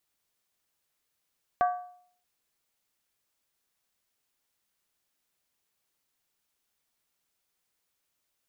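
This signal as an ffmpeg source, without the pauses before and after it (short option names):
-f lavfi -i "aevalsrc='0.112*pow(10,-3*t/0.59)*sin(2*PI*720*t)+0.0473*pow(10,-3*t/0.467)*sin(2*PI*1147.7*t)+0.02*pow(10,-3*t/0.404)*sin(2*PI*1537.9*t)+0.00841*pow(10,-3*t/0.389)*sin(2*PI*1653.1*t)+0.00355*pow(10,-3*t/0.362)*sin(2*PI*1910.2*t)':d=0.63:s=44100"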